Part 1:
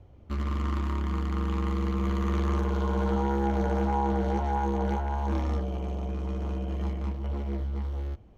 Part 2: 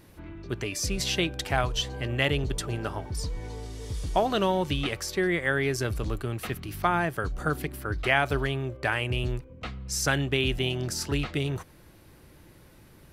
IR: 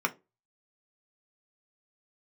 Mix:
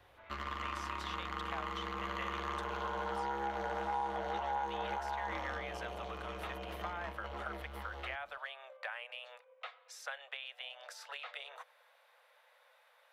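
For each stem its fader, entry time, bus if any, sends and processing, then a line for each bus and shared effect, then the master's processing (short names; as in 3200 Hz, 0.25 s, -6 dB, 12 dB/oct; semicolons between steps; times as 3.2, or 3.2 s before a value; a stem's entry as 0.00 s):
0.0 dB, 0.00 s, no send, high shelf 2000 Hz +11.5 dB; notch 2300 Hz, Q 17
-3.5 dB, 0.00 s, no send, steep high-pass 480 Hz 96 dB/oct; bell 3600 Hz +8 dB 0.21 oct; compressor 4:1, threshold -34 dBFS, peak gain reduction 13.5 dB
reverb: off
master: three-band isolator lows -18 dB, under 510 Hz, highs -15 dB, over 3000 Hz; compressor 2:1, threshold -38 dBFS, peak gain reduction 7.5 dB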